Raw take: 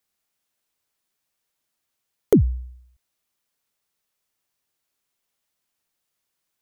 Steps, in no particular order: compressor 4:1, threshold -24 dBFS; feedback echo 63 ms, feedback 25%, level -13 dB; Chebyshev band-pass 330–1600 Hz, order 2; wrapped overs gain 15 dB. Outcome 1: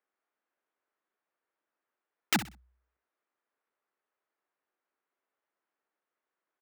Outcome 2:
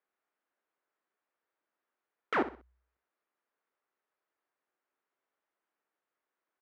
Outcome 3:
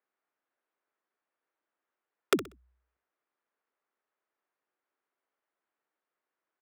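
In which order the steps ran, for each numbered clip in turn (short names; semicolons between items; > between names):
Chebyshev band-pass > wrapped overs > compressor > feedback echo; wrapped overs > feedback echo > compressor > Chebyshev band-pass; compressor > Chebyshev band-pass > wrapped overs > feedback echo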